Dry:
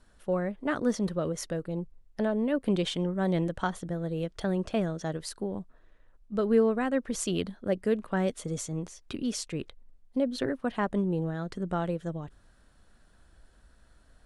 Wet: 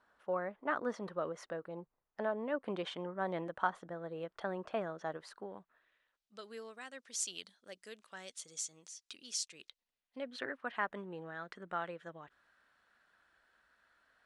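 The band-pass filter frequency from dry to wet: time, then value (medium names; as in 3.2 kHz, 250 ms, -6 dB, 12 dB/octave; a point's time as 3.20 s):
band-pass filter, Q 1.2
5.29 s 1.1 kHz
6.51 s 5.9 kHz
9.57 s 5.9 kHz
10.35 s 1.7 kHz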